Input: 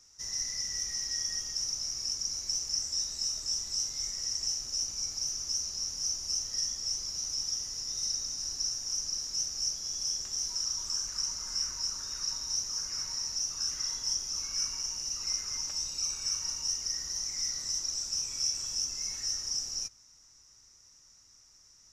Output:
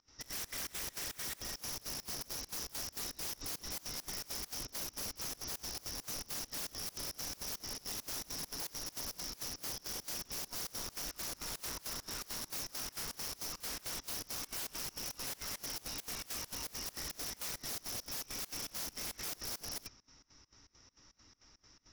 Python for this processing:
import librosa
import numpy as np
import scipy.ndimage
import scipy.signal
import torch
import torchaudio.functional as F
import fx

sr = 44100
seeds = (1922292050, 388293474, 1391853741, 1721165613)

y = scipy.signal.sosfilt(scipy.signal.butter(4, 4300.0, 'lowpass', fs=sr, output='sos'), x)
y = fx.peak_eq(y, sr, hz=280.0, db=7.5, octaves=0.78)
y = (np.mod(10.0 ** (40.5 / 20.0) * y + 1.0, 2.0) - 1.0) / 10.0 ** (40.5 / 20.0)
y = fx.volume_shaper(y, sr, bpm=135, per_beat=2, depth_db=-23, release_ms=77.0, shape='slow start')
y = F.gain(torch.from_numpy(y), 5.5).numpy()